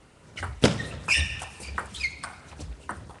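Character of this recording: Nellymoser

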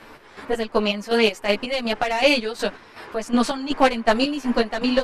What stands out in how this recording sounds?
chopped level 2.7 Hz, depth 60%, duty 45%; a shimmering, thickened sound

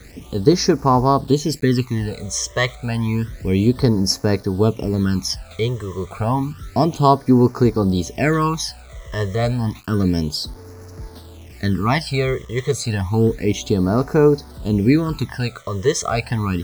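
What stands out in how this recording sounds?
a quantiser's noise floor 8-bit, dither none; phasing stages 12, 0.3 Hz, lowest notch 250–3200 Hz

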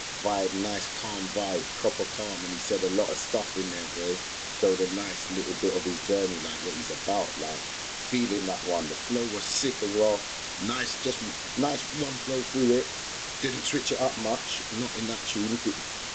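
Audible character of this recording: phasing stages 2, 0.72 Hz, lowest notch 640–2600 Hz; a quantiser's noise floor 6-bit, dither triangular; G.722

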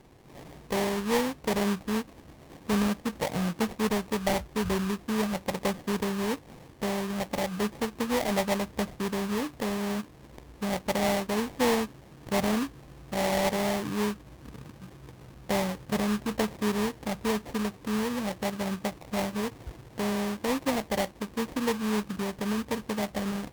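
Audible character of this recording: aliases and images of a low sample rate 1.4 kHz, jitter 20%; Vorbis

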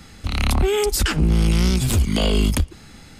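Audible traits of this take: noise floor -44 dBFS; spectral tilt -5.0 dB/octave

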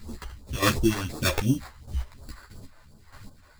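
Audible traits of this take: aliases and images of a low sample rate 3 kHz, jitter 0%; phasing stages 2, 2.8 Hz, lowest notch 160–2000 Hz; chopped level 1.6 Hz, depth 65%, duty 25%; a shimmering, thickened sound

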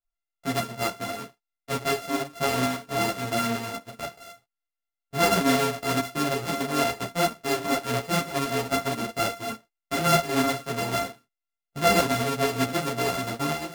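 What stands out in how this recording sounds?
a buzz of ramps at a fixed pitch in blocks of 64 samples; tremolo saw up 4.5 Hz, depth 40%; a shimmering, thickened sound

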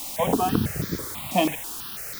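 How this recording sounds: a quantiser's noise floor 6-bit, dither triangular; notches that jump at a steady rate 6.1 Hz 430–2800 Hz

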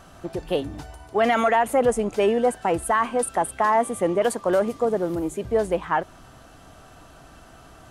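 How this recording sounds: noise floor -49 dBFS; spectral tilt -4.5 dB/octave

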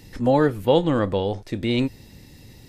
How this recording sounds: noise floor -48 dBFS; spectral tilt -6.0 dB/octave

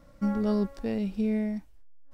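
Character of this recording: noise floor -55 dBFS; spectral tilt -7.5 dB/octave

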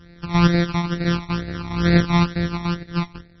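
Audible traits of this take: a buzz of ramps at a fixed pitch in blocks of 256 samples; phasing stages 12, 2.2 Hz, lowest notch 490–1000 Hz; MP3

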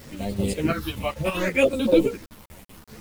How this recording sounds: phasing stages 6, 0.68 Hz, lowest notch 380–1800 Hz; chopped level 5.2 Hz, depth 65%, duty 70%; a quantiser's noise floor 8-bit, dither none; a shimmering, thickened sound

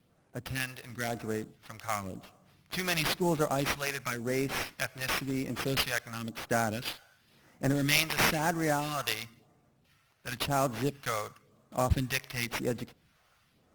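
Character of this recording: phasing stages 2, 0.96 Hz, lowest notch 230–4300 Hz; aliases and images of a low sample rate 7.8 kHz, jitter 20%; Opus

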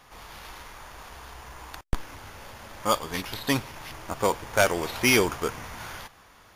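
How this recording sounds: noise floor -55 dBFS; spectral tilt -4.0 dB/octave

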